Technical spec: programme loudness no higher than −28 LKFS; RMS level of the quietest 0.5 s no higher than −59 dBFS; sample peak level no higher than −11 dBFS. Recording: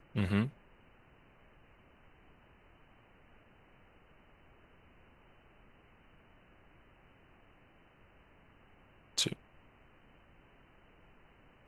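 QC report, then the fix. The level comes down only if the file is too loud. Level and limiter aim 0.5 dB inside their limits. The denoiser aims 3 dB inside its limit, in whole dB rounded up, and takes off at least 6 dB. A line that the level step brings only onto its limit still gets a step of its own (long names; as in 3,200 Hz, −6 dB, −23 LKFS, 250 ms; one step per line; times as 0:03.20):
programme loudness −35.0 LKFS: in spec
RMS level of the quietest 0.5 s −63 dBFS: in spec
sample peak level −16.5 dBFS: in spec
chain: no processing needed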